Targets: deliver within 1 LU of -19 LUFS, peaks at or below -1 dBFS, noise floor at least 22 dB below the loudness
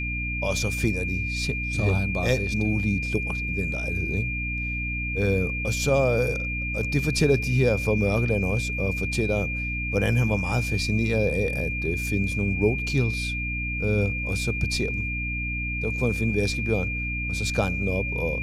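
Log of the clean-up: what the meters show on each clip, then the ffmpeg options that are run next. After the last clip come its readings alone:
hum 60 Hz; harmonics up to 300 Hz; hum level -29 dBFS; steady tone 2400 Hz; tone level -29 dBFS; loudness -25.0 LUFS; peak -9.0 dBFS; loudness target -19.0 LUFS
-> -af "bandreject=f=60:t=h:w=6,bandreject=f=120:t=h:w=6,bandreject=f=180:t=h:w=6,bandreject=f=240:t=h:w=6,bandreject=f=300:t=h:w=6"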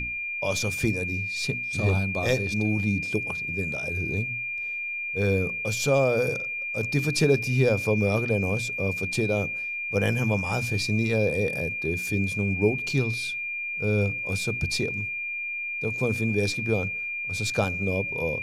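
hum none; steady tone 2400 Hz; tone level -29 dBFS
-> -af "bandreject=f=2.4k:w=30"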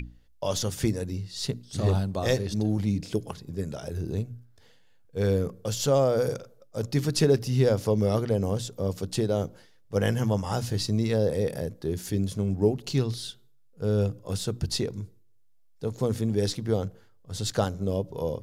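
steady tone none; loudness -28.0 LUFS; peak -10.5 dBFS; loudness target -19.0 LUFS
-> -af "volume=9dB"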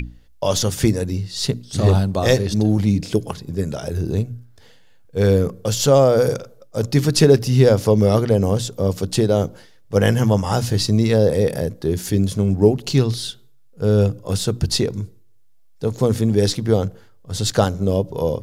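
loudness -19.0 LUFS; peak -1.5 dBFS; noise floor -47 dBFS

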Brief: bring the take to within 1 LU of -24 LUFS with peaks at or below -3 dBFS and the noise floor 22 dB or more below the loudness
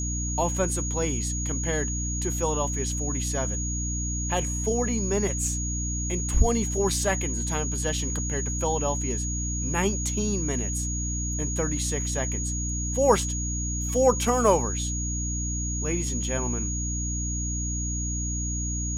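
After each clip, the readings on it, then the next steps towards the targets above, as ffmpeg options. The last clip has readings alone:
hum 60 Hz; harmonics up to 300 Hz; hum level -28 dBFS; steady tone 6700 Hz; tone level -31 dBFS; loudness -26.5 LUFS; peak -7.0 dBFS; loudness target -24.0 LUFS
-> -af "bandreject=f=60:t=h:w=4,bandreject=f=120:t=h:w=4,bandreject=f=180:t=h:w=4,bandreject=f=240:t=h:w=4,bandreject=f=300:t=h:w=4"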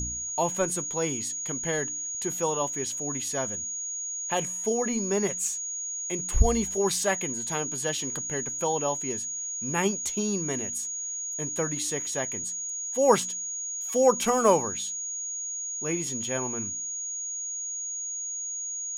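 hum none; steady tone 6700 Hz; tone level -31 dBFS
-> -af "bandreject=f=6.7k:w=30"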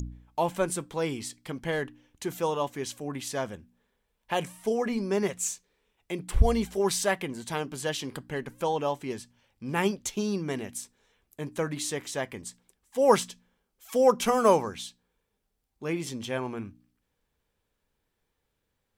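steady tone none; loudness -29.5 LUFS; peak -7.5 dBFS; loudness target -24.0 LUFS
-> -af "volume=5.5dB,alimiter=limit=-3dB:level=0:latency=1"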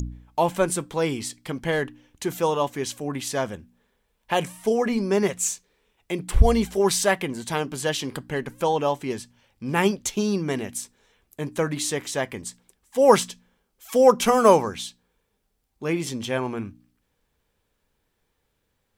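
loudness -24.0 LUFS; peak -3.0 dBFS; noise floor -74 dBFS

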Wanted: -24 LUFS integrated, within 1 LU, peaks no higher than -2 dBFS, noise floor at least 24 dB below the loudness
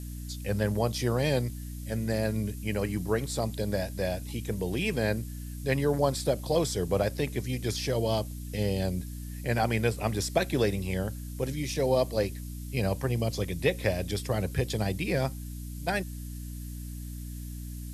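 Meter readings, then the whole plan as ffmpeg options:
hum 60 Hz; harmonics up to 300 Hz; hum level -36 dBFS; noise floor -39 dBFS; noise floor target -55 dBFS; loudness -30.5 LUFS; peak -10.5 dBFS; loudness target -24.0 LUFS
-> -af "bandreject=f=60:t=h:w=4,bandreject=f=120:t=h:w=4,bandreject=f=180:t=h:w=4,bandreject=f=240:t=h:w=4,bandreject=f=300:t=h:w=4"
-af "afftdn=nr=16:nf=-39"
-af "volume=6.5dB"

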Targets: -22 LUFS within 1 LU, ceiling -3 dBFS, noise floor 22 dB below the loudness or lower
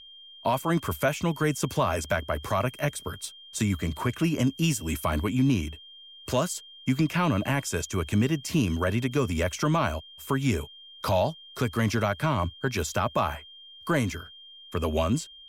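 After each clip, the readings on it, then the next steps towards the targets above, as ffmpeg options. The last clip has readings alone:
steady tone 3200 Hz; tone level -46 dBFS; loudness -27.5 LUFS; peak -14.0 dBFS; loudness target -22.0 LUFS
-> -af "bandreject=f=3.2k:w=30"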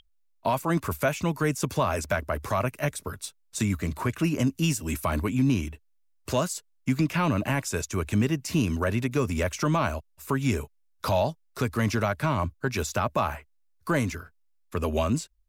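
steady tone none; loudness -27.5 LUFS; peak -14.0 dBFS; loudness target -22.0 LUFS
-> -af "volume=5.5dB"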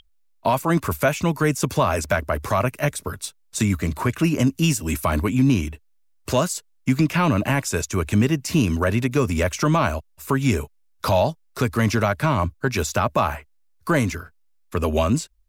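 loudness -22.0 LUFS; peak -8.5 dBFS; noise floor -60 dBFS

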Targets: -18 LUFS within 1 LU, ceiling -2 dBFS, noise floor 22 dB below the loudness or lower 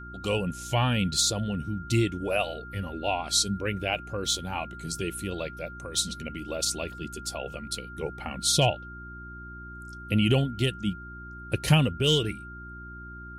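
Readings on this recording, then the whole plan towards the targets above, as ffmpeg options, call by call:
hum 60 Hz; harmonics up to 360 Hz; hum level -42 dBFS; steady tone 1400 Hz; tone level -42 dBFS; loudness -28.0 LUFS; peak -10.0 dBFS; loudness target -18.0 LUFS
-> -af "bandreject=f=60:t=h:w=4,bandreject=f=120:t=h:w=4,bandreject=f=180:t=h:w=4,bandreject=f=240:t=h:w=4,bandreject=f=300:t=h:w=4,bandreject=f=360:t=h:w=4"
-af "bandreject=f=1.4k:w=30"
-af "volume=10dB,alimiter=limit=-2dB:level=0:latency=1"

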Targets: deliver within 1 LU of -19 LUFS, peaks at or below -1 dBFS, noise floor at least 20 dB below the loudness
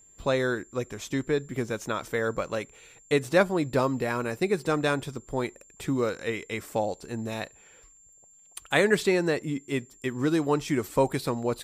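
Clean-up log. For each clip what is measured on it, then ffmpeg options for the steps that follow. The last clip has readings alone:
steady tone 7300 Hz; tone level -54 dBFS; loudness -28.0 LUFS; peak -8.0 dBFS; loudness target -19.0 LUFS
-> -af "bandreject=f=7.3k:w=30"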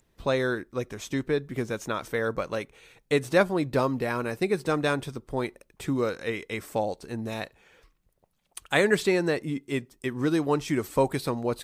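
steady tone none; loudness -28.0 LUFS; peak -8.0 dBFS; loudness target -19.0 LUFS
-> -af "volume=9dB,alimiter=limit=-1dB:level=0:latency=1"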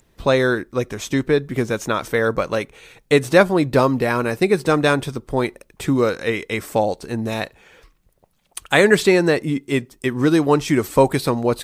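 loudness -19.0 LUFS; peak -1.0 dBFS; noise floor -61 dBFS

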